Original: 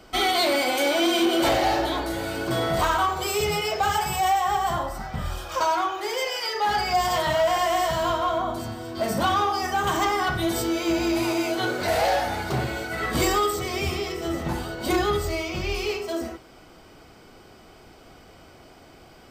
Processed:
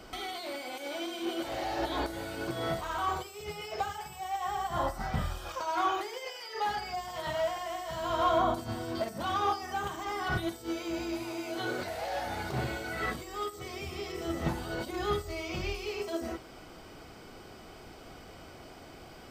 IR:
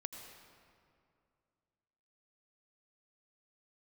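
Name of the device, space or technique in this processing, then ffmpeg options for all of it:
de-esser from a sidechain: -filter_complex "[0:a]asplit=2[a][b];[b]highpass=f=5.9k:w=0.5412,highpass=f=5.9k:w=1.3066,apad=whole_len=851245[c];[a][c]sidechaincompress=threshold=-51dB:ratio=16:attack=4.1:release=71"

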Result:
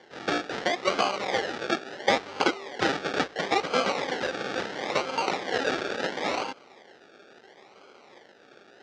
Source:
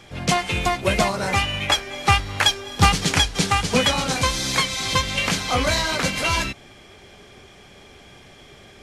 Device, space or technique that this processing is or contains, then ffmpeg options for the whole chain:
circuit-bent sampling toy: -af "acrusher=samples=34:mix=1:aa=0.000001:lfo=1:lforange=20.4:lforate=0.73,highpass=530,equalizer=f=640:t=q:w=4:g=-6,equalizer=f=1k:t=q:w=4:g=-7,equalizer=f=2.6k:t=q:w=4:g=-5,equalizer=f=4.3k:t=q:w=4:g=-3,lowpass=f=5.1k:w=0.5412,lowpass=f=5.1k:w=1.3066,volume=1.5dB"

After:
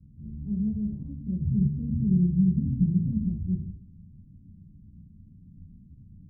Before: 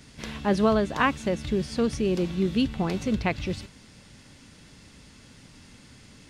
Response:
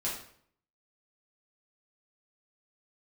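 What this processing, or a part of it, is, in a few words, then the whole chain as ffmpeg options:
club heard from the street: -filter_complex "[0:a]alimiter=limit=-19dB:level=0:latency=1:release=150,lowpass=f=190:w=0.5412,lowpass=f=190:w=1.3066[a];[1:a]atrim=start_sample=2205[b];[a][b]afir=irnorm=-1:irlink=0,asettb=1/sr,asplit=3[c][d][e];[c]atrim=end=1.414[f];[d]atrim=start=1.41:end=3.13,asetpts=PTS-STARTPTS,afade=t=in:d=0.004:c=qsin,afade=t=out:st=1.716:d=0.004:c=qsin,equalizer=f=130:w=2.7:g=14.5[g];[e]atrim=start=3.126[h];[f][g]acrossfade=d=0.004:c1=hsin:c2=qsin[i];[i][h]acrossfade=d=0.004:c1=qsin:c2=hsin"

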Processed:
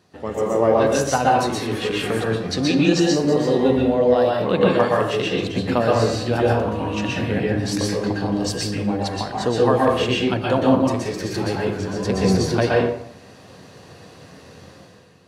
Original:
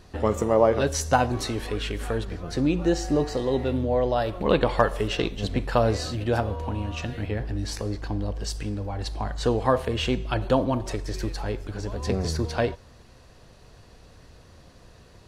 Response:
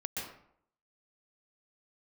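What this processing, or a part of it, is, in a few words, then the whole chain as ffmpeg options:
far laptop microphone: -filter_complex "[0:a]asettb=1/sr,asplit=3[a][b][c];[a]atrim=end=2.514[d];[b]atrim=start=2.51:end=3,asetpts=PTS-STARTPTS,afade=t=in:d=0.004:c=qsin,afade=t=out:st=0.486:d=0.004:c=qsin,equalizer=f=4.1k:t=o:w=1.8:g=10.5[e];[c]atrim=start=2.996[f];[d][e]acrossfade=d=0.004:c1=hsin:c2=qsin[g];[g][f]acrossfade=d=0.004:c1=qsin:c2=hsin[h];[1:a]atrim=start_sample=2205[i];[h][i]afir=irnorm=-1:irlink=0,highpass=f=110:w=0.5412,highpass=f=110:w=1.3066,dynaudnorm=f=110:g=9:m=11dB,volume=-3dB"

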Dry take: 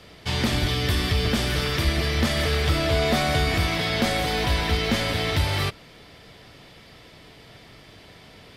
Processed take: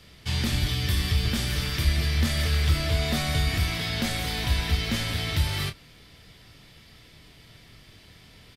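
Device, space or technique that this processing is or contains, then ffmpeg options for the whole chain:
smiley-face EQ: -filter_complex "[0:a]lowshelf=f=100:g=5.5,equalizer=f=610:t=o:w=2.2:g=-7.5,highshelf=f=8.5k:g=5.5,asplit=2[a][b];[b]adelay=26,volume=-9dB[c];[a][c]amix=inputs=2:normalize=0,volume=-3.5dB"

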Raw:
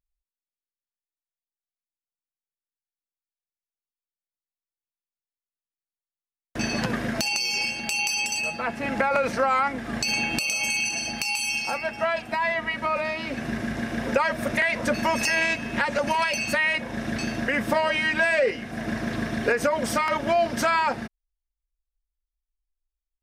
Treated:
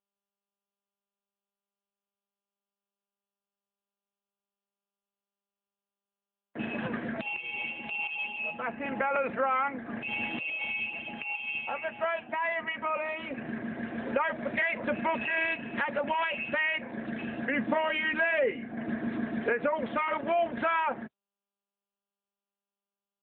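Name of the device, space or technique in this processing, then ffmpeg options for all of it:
mobile call with aggressive noise cancelling: -filter_complex "[0:a]asplit=3[a][b][c];[a]afade=t=out:st=17.47:d=0.02[d];[b]equalizer=f=260:w=2.9:g=5.5,afade=t=in:st=17.47:d=0.02,afade=t=out:st=19.38:d=0.02[e];[c]afade=t=in:st=19.38:d=0.02[f];[d][e][f]amix=inputs=3:normalize=0,highpass=160,afftdn=nr=16:nf=-42,volume=-5dB" -ar 8000 -c:a libopencore_amrnb -b:a 10200

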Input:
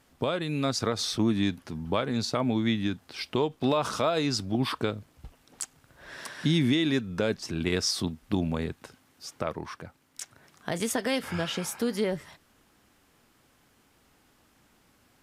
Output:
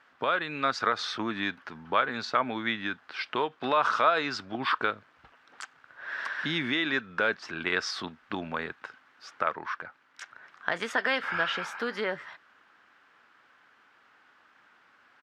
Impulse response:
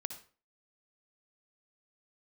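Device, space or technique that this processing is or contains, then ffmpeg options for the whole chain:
filter by subtraction: -filter_complex "[0:a]firequalizer=gain_entry='entry(740,0);entry(1500,6);entry(2100,-2);entry(10000,-28)':delay=0.05:min_phase=1,asplit=2[a][b];[b]lowpass=1.7k,volume=-1[c];[a][c]amix=inputs=2:normalize=0,volume=4.5dB"

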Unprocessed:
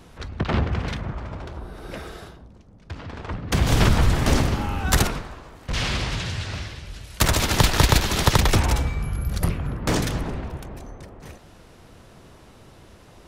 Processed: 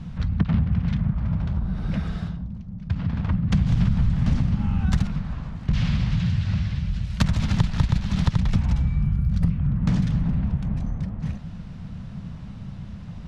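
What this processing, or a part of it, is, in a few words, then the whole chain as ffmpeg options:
jukebox: -af "lowpass=5k,lowshelf=f=260:t=q:w=3:g=12,acompressor=threshold=-20dB:ratio=4"

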